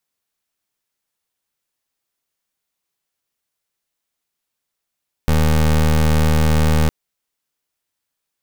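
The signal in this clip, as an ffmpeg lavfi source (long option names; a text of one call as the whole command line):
ffmpeg -f lavfi -i "aevalsrc='0.2*(2*lt(mod(77.7*t,1),0.23)-1)':duration=1.61:sample_rate=44100" out.wav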